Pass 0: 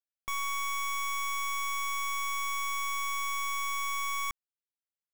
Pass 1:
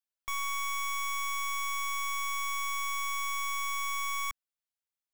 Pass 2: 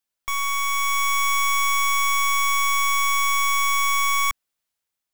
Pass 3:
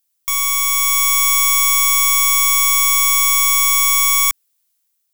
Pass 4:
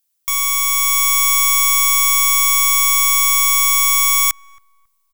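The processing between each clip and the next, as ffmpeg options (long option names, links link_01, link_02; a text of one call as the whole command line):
ffmpeg -i in.wav -af "equalizer=frequency=260:width_type=o:width=1.3:gain=-14.5" out.wav
ffmpeg -i in.wav -af "dynaudnorm=framelen=330:gausssize=5:maxgain=4dB,volume=8.5dB" out.wav
ffmpeg -i in.wav -af "crystalizer=i=4.5:c=0,volume=-2dB" out.wav
ffmpeg -i in.wav -filter_complex "[0:a]asplit=2[link_01][link_02];[link_02]adelay=273,lowpass=frequency=840:poles=1,volume=-20.5dB,asplit=2[link_03][link_04];[link_04]adelay=273,lowpass=frequency=840:poles=1,volume=0.35,asplit=2[link_05][link_06];[link_06]adelay=273,lowpass=frequency=840:poles=1,volume=0.35[link_07];[link_01][link_03][link_05][link_07]amix=inputs=4:normalize=0" out.wav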